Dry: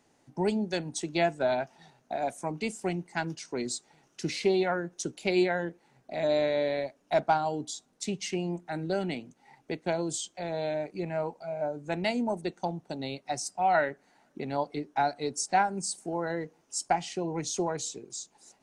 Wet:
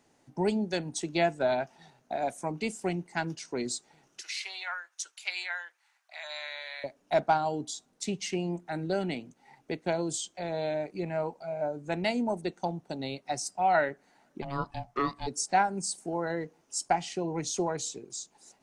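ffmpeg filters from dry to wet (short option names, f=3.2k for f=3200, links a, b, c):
-filter_complex "[0:a]asettb=1/sr,asplit=3[a][b][c];[a]atrim=end=4.214[d];[b]atrim=start=4.21:end=6.84,asetpts=PTS-STARTPTS,afade=t=in:d=0.004:c=qsin,afade=t=out:st=2.626:d=0.004:c=qsin,highpass=f=1.1k:w=0.5412,highpass=f=1.1k:w=1.3066[e];[c]atrim=start=6.836[f];[d][e]acrossfade=d=0.004:c1=hsin:c2=qsin[g];[g][f]acrossfade=d=0.004:c1=qsin:c2=hsin,asplit=3[h][i][j];[h]afade=t=out:st=14.41:d=0.02[k];[i]aeval=exprs='val(0)*sin(2*PI*420*n/s)':c=same,afade=t=in:st=14.41:d=0.02,afade=t=out:st=15.26:d=0.02[l];[j]afade=t=in:st=15.26:d=0.02[m];[k][l][m]amix=inputs=3:normalize=0"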